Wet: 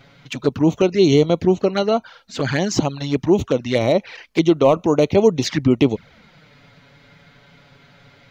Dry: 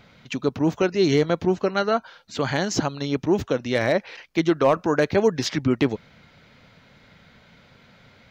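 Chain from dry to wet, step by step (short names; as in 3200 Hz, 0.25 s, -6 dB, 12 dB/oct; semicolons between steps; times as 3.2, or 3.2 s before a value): envelope flanger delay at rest 7.8 ms, full sweep at -18.5 dBFS; gain +6 dB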